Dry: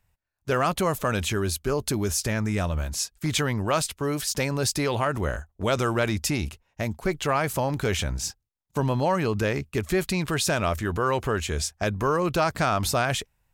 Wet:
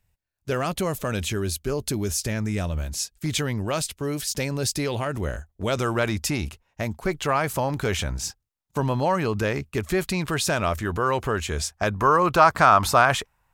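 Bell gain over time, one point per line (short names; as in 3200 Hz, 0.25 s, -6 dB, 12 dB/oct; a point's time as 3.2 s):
bell 1100 Hz 1.4 oct
5.54 s -5.5 dB
6 s +2 dB
11.43 s +2 dB
12.44 s +12 dB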